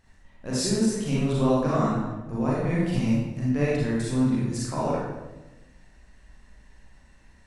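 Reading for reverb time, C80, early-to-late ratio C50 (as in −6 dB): 1.1 s, 2.0 dB, −2.5 dB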